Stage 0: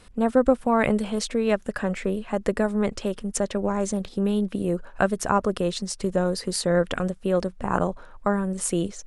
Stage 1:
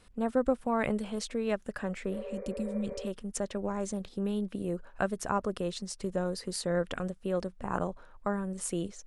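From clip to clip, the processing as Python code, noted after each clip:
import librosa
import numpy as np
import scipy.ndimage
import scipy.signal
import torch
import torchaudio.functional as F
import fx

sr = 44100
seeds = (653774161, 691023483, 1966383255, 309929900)

y = fx.spec_repair(x, sr, seeds[0], start_s=2.14, length_s=0.91, low_hz=390.0, high_hz=2400.0, source='before')
y = F.gain(torch.from_numpy(y), -8.5).numpy()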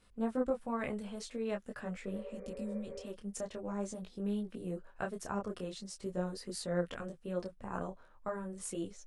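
y = fx.detune_double(x, sr, cents=16)
y = F.gain(torch.from_numpy(y), -3.0).numpy()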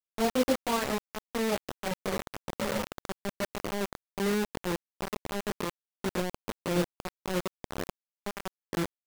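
y = fx.spec_quant(x, sr, step_db=30)
y = fx.filter_sweep_lowpass(y, sr, from_hz=1300.0, to_hz=400.0, start_s=2.36, end_s=3.84, q=1.0)
y = fx.quant_dither(y, sr, seeds[1], bits=6, dither='none')
y = F.gain(torch.from_numpy(y), 6.5).numpy()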